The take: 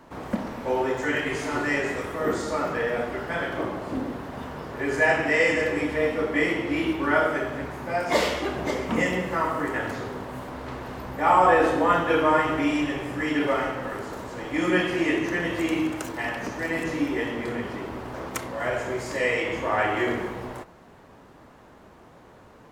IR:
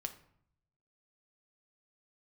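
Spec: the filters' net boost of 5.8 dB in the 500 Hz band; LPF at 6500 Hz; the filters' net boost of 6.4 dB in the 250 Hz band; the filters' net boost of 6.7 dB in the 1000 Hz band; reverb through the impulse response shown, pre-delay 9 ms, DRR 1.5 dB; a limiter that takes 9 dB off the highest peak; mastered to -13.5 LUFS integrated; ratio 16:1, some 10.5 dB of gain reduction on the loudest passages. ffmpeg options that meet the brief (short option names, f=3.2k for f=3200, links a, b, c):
-filter_complex "[0:a]lowpass=6.5k,equalizer=f=250:t=o:g=6.5,equalizer=f=500:t=o:g=3.5,equalizer=f=1k:t=o:g=7,acompressor=threshold=-17dB:ratio=16,alimiter=limit=-18dB:level=0:latency=1,asplit=2[a][b];[1:a]atrim=start_sample=2205,adelay=9[c];[b][c]afir=irnorm=-1:irlink=0,volume=0dB[d];[a][d]amix=inputs=2:normalize=0,volume=11.5dB"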